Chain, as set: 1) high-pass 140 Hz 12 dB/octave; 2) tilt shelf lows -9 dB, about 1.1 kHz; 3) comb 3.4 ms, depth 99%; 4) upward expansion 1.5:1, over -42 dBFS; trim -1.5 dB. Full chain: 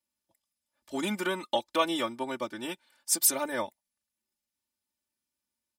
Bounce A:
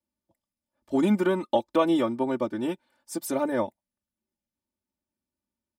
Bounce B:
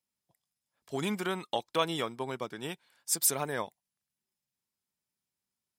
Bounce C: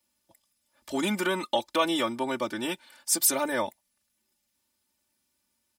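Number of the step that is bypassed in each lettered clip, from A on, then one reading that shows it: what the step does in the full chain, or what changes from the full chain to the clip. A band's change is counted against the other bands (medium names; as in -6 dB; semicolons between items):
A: 2, 8 kHz band -18.0 dB; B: 3, 125 Hz band +8.5 dB; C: 4, crest factor change -2.5 dB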